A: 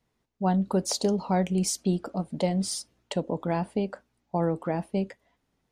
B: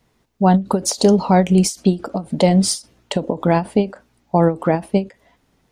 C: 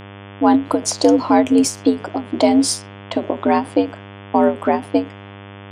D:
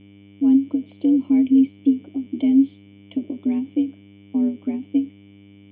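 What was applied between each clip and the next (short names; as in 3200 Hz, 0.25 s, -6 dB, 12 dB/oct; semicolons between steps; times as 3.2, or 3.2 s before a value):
in parallel at -2.5 dB: limiter -19.5 dBFS, peak gain reduction 7.5 dB; on the sum: ending taper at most 230 dB/s; gain +8.5 dB
frequency shift +81 Hz; low-pass opened by the level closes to 2000 Hz, open at -14 dBFS; buzz 100 Hz, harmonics 35, -37 dBFS -4 dB/oct
vocal tract filter i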